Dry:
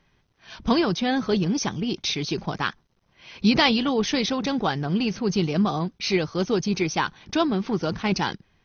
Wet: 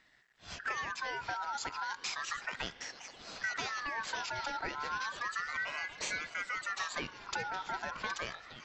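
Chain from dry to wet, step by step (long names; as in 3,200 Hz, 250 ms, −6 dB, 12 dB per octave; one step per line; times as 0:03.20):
downward compressor 6 to 1, threshold −33 dBFS, peak gain reduction 17.5 dB
echo through a band-pass that steps 767 ms, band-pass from 3,200 Hz, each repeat −0.7 octaves, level −4 dB
spring reverb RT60 3.8 s, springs 35 ms, chirp 30 ms, DRR 16 dB
ring modulator whose carrier an LFO sweeps 1,500 Hz, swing 25%, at 0.33 Hz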